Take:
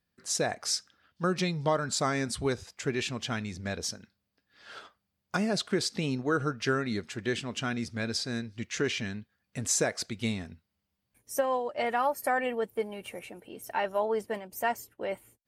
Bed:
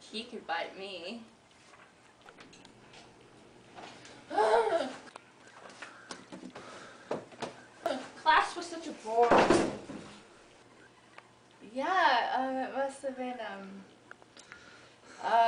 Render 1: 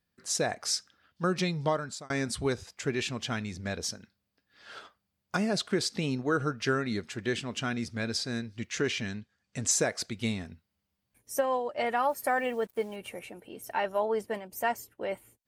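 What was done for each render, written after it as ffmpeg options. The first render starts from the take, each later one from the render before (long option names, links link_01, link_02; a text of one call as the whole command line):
ffmpeg -i in.wav -filter_complex "[0:a]asettb=1/sr,asplit=3[link_01][link_02][link_03];[link_01]atrim=end=9.084[link_04];[link_02]atrim=start=9.08:end=9.71,asetpts=PTS-STARTPTS,afade=type=in:duration=0.004:curve=qsin,afade=type=out:start_time=0.626:duration=0.004:curve=qsin,lowpass=frequency=7000:width_type=q:width=1.9[link_05];[link_03]atrim=start=9.706[link_06];[link_04][link_05]acrossfade=duration=0.004:curve1=hsin:curve2=qsin[link_07];[link_07][link_06]acrossfade=duration=0.004:curve1=qsin:curve2=hsin,asettb=1/sr,asplit=3[link_08][link_09][link_10];[link_08]atrim=end=12.094[link_11];[link_09]atrim=start=12.09:end=12.96,asetpts=PTS-STARTPTS,afade=type=in:duration=0.004:curve=qsin,afade=type=out:start_time=0.866:duration=0.004:curve=qsin,acrusher=bits=8:mix=0:aa=0.5[link_12];[link_10]atrim=start=12.956[link_13];[link_11][link_12]acrossfade=duration=0.004:curve1=hsin:curve2=qsin[link_14];[link_14][link_13]acrossfade=duration=0.004:curve1=qsin:curve2=hsin,asplit=2[link_15][link_16];[link_15]atrim=end=2.1,asetpts=PTS-STARTPTS,afade=type=out:start_time=1.65:duration=0.45[link_17];[link_16]atrim=start=2.1,asetpts=PTS-STARTPTS,afade=type=in:duration=0.004:curve=hsin[link_18];[link_17][link_18]concat=n=2:v=0:a=1" out.wav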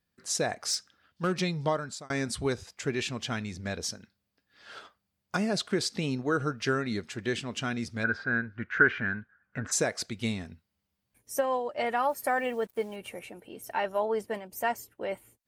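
ffmpeg -i in.wav -filter_complex "[0:a]asettb=1/sr,asplit=3[link_01][link_02][link_03];[link_01]atrim=end=0.704[link_04];[link_02]atrim=start=0.7:end=1.34,asetpts=PTS-STARTPTS,afade=type=in:duration=0.004:curve=qsin,afade=type=out:start_time=0.636:duration=0.004:curve=qsin,asoftclip=type=hard:threshold=-22dB[link_05];[link_03]atrim=start=1.336[link_06];[link_04][link_05]acrossfade=duration=0.004:curve1=hsin:curve2=qsin[link_07];[link_07][link_06]acrossfade=duration=0.004:curve1=qsin:curve2=hsin,asplit=3[link_08][link_09][link_10];[link_08]afade=type=out:start_time=8.03:duration=0.02[link_11];[link_09]lowpass=frequency=1500:width_type=q:width=11,afade=type=in:start_time=8.03:duration=0.02,afade=type=out:start_time=9.71:duration=0.02[link_12];[link_10]afade=type=in:start_time=9.71:duration=0.02[link_13];[link_11][link_12][link_13]amix=inputs=3:normalize=0" out.wav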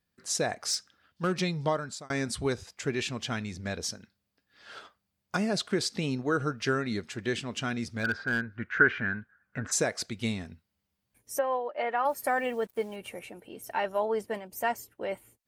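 ffmpeg -i in.wav -filter_complex "[0:a]asettb=1/sr,asplit=3[link_01][link_02][link_03];[link_01]atrim=end=7.694[link_04];[link_02]atrim=start=7.69:end=8.42,asetpts=PTS-STARTPTS,afade=type=in:duration=0.004:curve=qsin,afade=type=out:start_time=0.726:duration=0.004:curve=qsin,volume=23dB,asoftclip=hard,volume=-23dB[link_05];[link_03]atrim=start=8.416[link_06];[link_04][link_05]acrossfade=duration=0.004:curve1=hsin:curve2=qsin[link_07];[link_07][link_06]acrossfade=duration=0.004:curve1=qsin:curve2=hsin,asplit=3[link_08][link_09][link_10];[link_08]afade=type=out:start_time=11.38:duration=0.02[link_11];[link_09]highpass=350,lowpass=2600,afade=type=in:start_time=11.38:duration=0.02,afade=type=out:start_time=12.04:duration=0.02[link_12];[link_10]afade=type=in:start_time=12.04:duration=0.02[link_13];[link_11][link_12][link_13]amix=inputs=3:normalize=0" out.wav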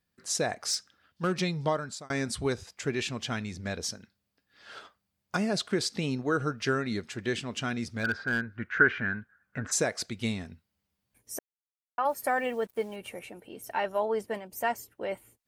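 ffmpeg -i in.wav -filter_complex "[0:a]asplit=3[link_01][link_02][link_03];[link_01]atrim=end=11.39,asetpts=PTS-STARTPTS,afade=type=out:start_time=11.386:duration=0.004:curve=hsin[link_04];[link_02]atrim=start=11.39:end=11.98,asetpts=PTS-STARTPTS,volume=0[link_05];[link_03]atrim=start=11.98,asetpts=PTS-STARTPTS,afade=type=in:duration=0.004:curve=hsin[link_06];[link_04][link_05][link_06]concat=n=3:v=0:a=1" out.wav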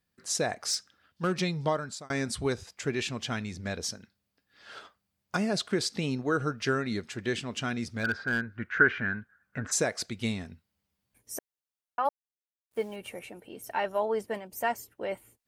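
ffmpeg -i in.wav -filter_complex "[0:a]asplit=3[link_01][link_02][link_03];[link_01]atrim=end=12.09,asetpts=PTS-STARTPTS,afade=type=out:start_time=12.086:duration=0.004:curve=hsin[link_04];[link_02]atrim=start=12.09:end=12.71,asetpts=PTS-STARTPTS,volume=0[link_05];[link_03]atrim=start=12.71,asetpts=PTS-STARTPTS,afade=type=in:duration=0.004:curve=hsin[link_06];[link_04][link_05][link_06]concat=n=3:v=0:a=1" out.wav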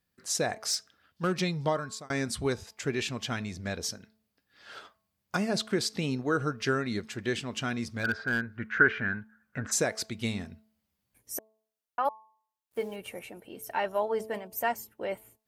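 ffmpeg -i in.wav -af "equalizer=frequency=12000:width=7.4:gain=8,bandreject=frequency=218.4:width_type=h:width=4,bandreject=frequency=436.8:width_type=h:width=4,bandreject=frequency=655.2:width_type=h:width=4,bandreject=frequency=873.6:width_type=h:width=4,bandreject=frequency=1092:width_type=h:width=4" out.wav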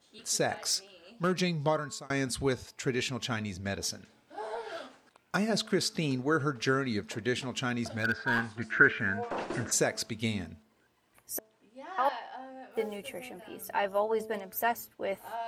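ffmpeg -i in.wav -i bed.wav -filter_complex "[1:a]volume=-12.5dB[link_01];[0:a][link_01]amix=inputs=2:normalize=0" out.wav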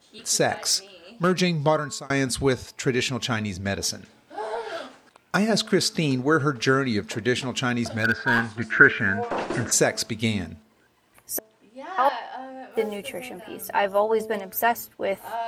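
ffmpeg -i in.wav -af "volume=7.5dB" out.wav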